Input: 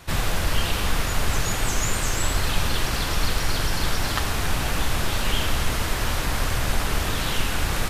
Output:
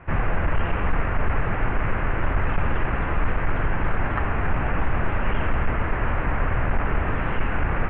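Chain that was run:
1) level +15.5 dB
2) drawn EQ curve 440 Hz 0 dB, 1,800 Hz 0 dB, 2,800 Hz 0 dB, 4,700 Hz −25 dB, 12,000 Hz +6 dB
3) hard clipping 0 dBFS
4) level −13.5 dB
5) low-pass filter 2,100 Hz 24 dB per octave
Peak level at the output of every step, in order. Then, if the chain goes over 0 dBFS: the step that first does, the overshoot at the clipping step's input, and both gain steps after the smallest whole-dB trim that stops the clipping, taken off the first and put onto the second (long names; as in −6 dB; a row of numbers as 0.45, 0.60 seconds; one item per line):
+8.0, +7.0, 0.0, −13.5, −11.5 dBFS
step 1, 7.0 dB
step 1 +8.5 dB, step 4 −6.5 dB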